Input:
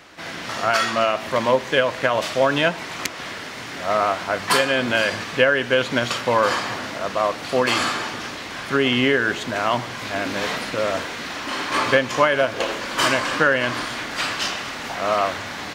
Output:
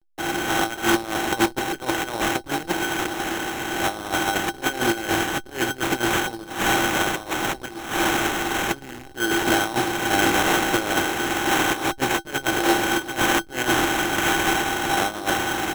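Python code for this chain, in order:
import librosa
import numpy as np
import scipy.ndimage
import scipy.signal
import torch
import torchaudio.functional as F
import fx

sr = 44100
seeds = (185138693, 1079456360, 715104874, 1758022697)

y = fx.spec_flatten(x, sr, power=0.49)
y = fx.peak_eq(y, sr, hz=12000.0, db=8.0, octaves=1.8, at=(6.45, 9.21))
y = fx.over_compress(y, sr, threshold_db=-25.0, ratio=-0.5)
y = fx.backlash(y, sr, play_db=-25.5)
y = fx.small_body(y, sr, hz=(340.0, 790.0, 1500.0), ring_ms=95, db=17)
y = fx.sample_hold(y, sr, seeds[0], rate_hz=4700.0, jitter_pct=0)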